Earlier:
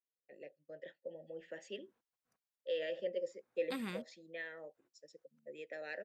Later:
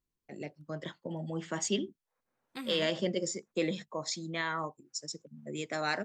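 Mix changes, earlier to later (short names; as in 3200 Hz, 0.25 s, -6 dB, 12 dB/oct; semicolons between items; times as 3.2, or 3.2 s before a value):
first voice: remove vowel filter e; second voice: entry -1.15 s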